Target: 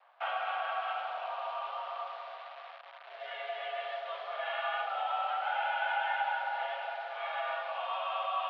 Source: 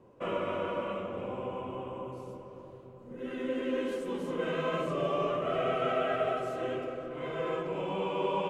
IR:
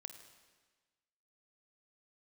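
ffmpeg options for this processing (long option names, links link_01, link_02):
-af "acompressor=threshold=-33dB:ratio=3,acrusher=bits=9:dc=4:mix=0:aa=0.000001,highpass=frequency=580:width_type=q:width=0.5412,highpass=frequency=580:width_type=q:width=1.307,lowpass=frequency=3600:width_type=q:width=0.5176,lowpass=frequency=3600:width_type=q:width=0.7071,lowpass=frequency=3600:width_type=q:width=1.932,afreqshift=170,volume=5dB"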